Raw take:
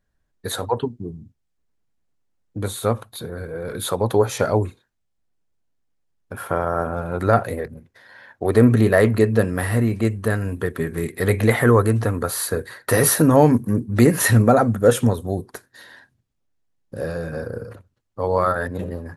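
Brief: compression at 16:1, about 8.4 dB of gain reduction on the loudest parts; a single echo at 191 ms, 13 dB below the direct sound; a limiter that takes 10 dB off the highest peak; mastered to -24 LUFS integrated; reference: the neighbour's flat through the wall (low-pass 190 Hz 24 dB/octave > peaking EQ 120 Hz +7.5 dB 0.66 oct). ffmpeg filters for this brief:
-af "acompressor=threshold=0.141:ratio=16,alimiter=limit=0.15:level=0:latency=1,lowpass=f=190:w=0.5412,lowpass=f=190:w=1.3066,equalizer=f=120:t=o:w=0.66:g=7.5,aecho=1:1:191:0.224,volume=1.5"

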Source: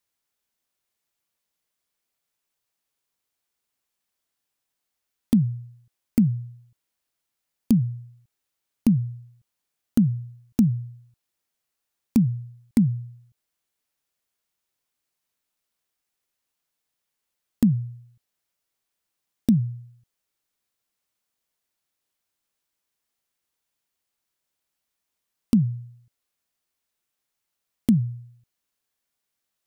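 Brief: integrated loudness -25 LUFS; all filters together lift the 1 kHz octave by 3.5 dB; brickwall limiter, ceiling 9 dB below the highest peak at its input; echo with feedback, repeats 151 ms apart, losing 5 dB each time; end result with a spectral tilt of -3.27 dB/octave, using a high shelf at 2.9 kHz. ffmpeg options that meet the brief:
-af "equalizer=f=1000:t=o:g=4,highshelf=f=2900:g=4.5,alimiter=limit=0.168:level=0:latency=1,aecho=1:1:151|302|453|604|755|906|1057:0.562|0.315|0.176|0.0988|0.0553|0.031|0.0173,volume=1.26"

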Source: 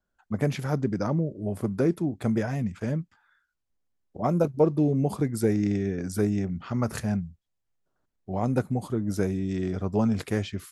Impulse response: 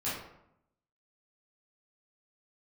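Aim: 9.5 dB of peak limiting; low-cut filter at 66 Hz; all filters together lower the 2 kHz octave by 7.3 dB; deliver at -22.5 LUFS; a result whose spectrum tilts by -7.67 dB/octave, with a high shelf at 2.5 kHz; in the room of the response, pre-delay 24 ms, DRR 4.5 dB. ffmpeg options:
-filter_complex "[0:a]highpass=66,equalizer=f=2000:t=o:g=-7.5,highshelf=f=2500:g=-5.5,alimiter=limit=0.106:level=0:latency=1,asplit=2[s0][s1];[1:a]atrim=start_sample=2205,adelay=24[s2];[s1][s2]afir=irnorm=-1:irlink=0,volume=0.299[s3];[s0][s3]amix=inputs=2:normalize=0,volume=2"

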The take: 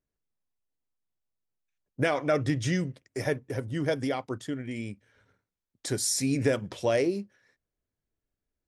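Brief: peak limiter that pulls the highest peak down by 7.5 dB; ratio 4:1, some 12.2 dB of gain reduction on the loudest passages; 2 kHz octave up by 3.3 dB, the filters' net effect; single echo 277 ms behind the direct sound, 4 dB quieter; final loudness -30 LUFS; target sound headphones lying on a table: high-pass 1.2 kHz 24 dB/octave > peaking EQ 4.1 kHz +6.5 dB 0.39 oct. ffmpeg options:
-af "equalizer=f=2000:t=o:g=4,acompressor=threshold=0.0178:ratio=4,alimiter=level_in=1.78:limit=0.0631:level=0:latency=1,volume=0.562,highpass=f=1200:w=0.5412,highpass=f=1200:w=1.3066,equalizer=f=4100:t=o:w=0.39:g=6.5,aecho=1:1:277:0.631,volume=4.73"

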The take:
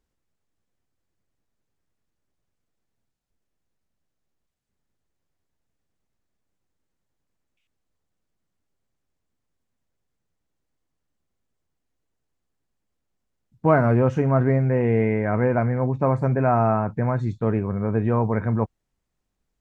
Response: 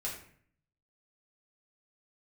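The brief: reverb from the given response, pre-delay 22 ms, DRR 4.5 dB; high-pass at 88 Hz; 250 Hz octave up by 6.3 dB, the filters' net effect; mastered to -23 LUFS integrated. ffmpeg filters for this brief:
-filter_complex "[0:a]highpass=88,equalizer=f=250:t=o:g=7.5,asplit=2[s0][s1];[1:a]atrim=start_sample=2205,adelay=22[s2];[s1][s2]afir=irnorm=-1:irlink=0,volume=0.501[s3];[s0][s3]amix=inputs=2:normalize=0,volume=0.531"

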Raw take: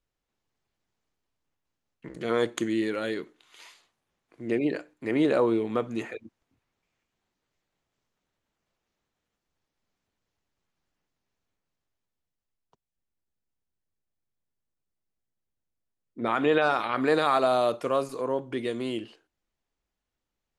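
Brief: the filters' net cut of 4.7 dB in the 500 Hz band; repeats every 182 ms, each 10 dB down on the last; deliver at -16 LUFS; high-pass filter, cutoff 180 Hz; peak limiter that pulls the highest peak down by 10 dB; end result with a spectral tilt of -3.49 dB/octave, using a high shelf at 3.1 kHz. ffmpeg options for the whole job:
-af "highpass=180,equalizer=f=500:t=o:g=-5.5,highshelf=f=3100:g=-3.5,alimiter=limit=0.0668:level=0:latency=1,aecho=1:1:182|364|546|728:0.316|0.101|0.0324|0.0104,volume=7.94"

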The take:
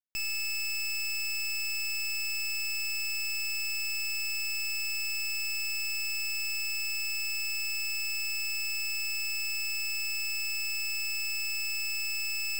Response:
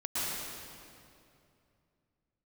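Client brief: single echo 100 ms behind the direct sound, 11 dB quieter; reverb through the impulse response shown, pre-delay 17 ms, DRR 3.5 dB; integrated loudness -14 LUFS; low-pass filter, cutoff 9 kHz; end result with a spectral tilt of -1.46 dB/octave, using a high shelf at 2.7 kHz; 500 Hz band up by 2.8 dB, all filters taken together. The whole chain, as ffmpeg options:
-filter_complex "[0:a]lowpass=9000,equalizer=f=500:t=o:g=3.5,highshelf=f=2700:g=-8,aecho=1:1:100:0.282,asplit=2[s0][s1];[1:a]atrim=start_sample=2205,adelay=17[s2];[s1][s2]afir=irnorm=-1:irlink=0,volume=0.299[s3];[s0][s3]amix=inputs=2:normalize=0,volume=12.6"

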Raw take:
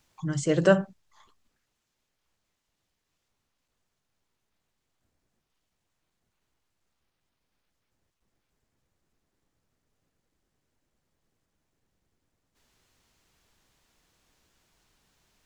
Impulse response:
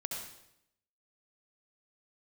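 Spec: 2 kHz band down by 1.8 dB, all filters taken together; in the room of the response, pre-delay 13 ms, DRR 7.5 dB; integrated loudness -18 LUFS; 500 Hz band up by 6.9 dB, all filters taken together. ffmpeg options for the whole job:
-filter_complex "[0:a]equalizer=f=500:t=o:g=8.5,equalizer=f=2000:t=o:g=-3.5,asplit=2[s0][s1];[1:a]atrim=start_sample=2205,adelay=13[s2];[s1][s2]afir=irnorm=-1:irlink=0,volume=0.376[s3];[s0][s3]amix=inputs=2:normalize=0,volume=1.26"

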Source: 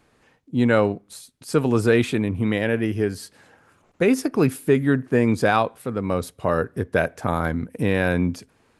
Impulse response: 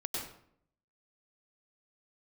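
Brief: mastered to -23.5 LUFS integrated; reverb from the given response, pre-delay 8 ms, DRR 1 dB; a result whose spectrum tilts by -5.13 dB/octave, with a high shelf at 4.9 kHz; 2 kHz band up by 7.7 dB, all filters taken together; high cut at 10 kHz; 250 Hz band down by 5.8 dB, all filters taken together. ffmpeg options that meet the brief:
-filter_complex "[0:a]lowpass=10000,equalizer=f=250:t=o:g=-7.5,equalizer=f=2000:t=o:g=9,highshelf=f=4900:g=8.5,asplit=2[s0][s1];[1:a]atrim=start_sample=2205,adelay=8[s2];[s1][s2]afir=irnorm=-1:irlink=0,volume=0.668[s3];[s0][s3]amix=inputs=2:normalize=0,volume=0.596"

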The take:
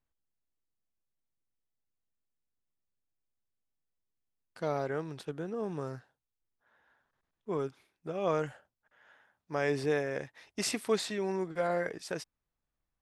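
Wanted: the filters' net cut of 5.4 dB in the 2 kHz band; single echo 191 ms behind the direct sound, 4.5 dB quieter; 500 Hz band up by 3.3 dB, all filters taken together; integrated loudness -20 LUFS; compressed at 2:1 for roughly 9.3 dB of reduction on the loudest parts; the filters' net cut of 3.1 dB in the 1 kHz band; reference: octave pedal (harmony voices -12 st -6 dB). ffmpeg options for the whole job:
-filter_complex "[0:a]equalizer=f=500:t=o:g=5.5,equalizer=f=1000:t=o:g=-6.5,equalizer=f=2000:t=o:g=-5,acompressor=threshold=0.0112:ratio=2,aecho=1:1:191:0.596,asplit=2[s0][s1];[s1]asetrate=22050,aresample=44100,atempo=2,volume=0.501[s2];[s0][s2]amix=inputs=2:normalize=0,volume=7.5"

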